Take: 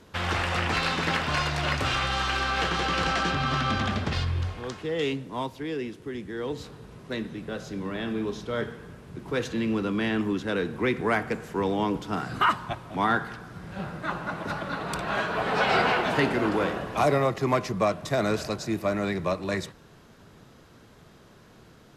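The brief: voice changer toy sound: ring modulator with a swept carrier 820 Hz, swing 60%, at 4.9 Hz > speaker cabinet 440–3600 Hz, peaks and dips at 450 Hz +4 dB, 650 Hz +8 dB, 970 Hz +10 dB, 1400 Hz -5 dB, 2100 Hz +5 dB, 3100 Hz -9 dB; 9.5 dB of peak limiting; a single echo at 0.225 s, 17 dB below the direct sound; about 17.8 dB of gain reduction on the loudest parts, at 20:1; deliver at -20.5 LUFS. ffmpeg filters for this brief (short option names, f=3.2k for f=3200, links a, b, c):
-af "acompressor=threshold=-36dB:ratio=20,alimiter=level_in=8.5dB:limit=-24dB:level=0:latency=1,volume=-8.5dB,aecho=1:1:225:0.141,aeval=exprs='val(0)*sin(2*PI*820*n/s+820*0.6/4.9*sin(2*PI*4.9*n/s))':c=same,highpass=440,equalizer=f=450:t=q:w=4:g=4,equalizer=f=650:t=q:w=4:g=8,equalizer=f=970:t=q:w=4:g=10,equalizer=f=1.4k:t=q:w=4:g=-5,equalizer=f=2.1k:t=q:w=4:g=5,equalizer=f=3.1k:t=q:w=4:g=-9,lowpass=f=3.6k:w=0.5412,lowpass=f=3.6k:w=1.3066,volume=21dB"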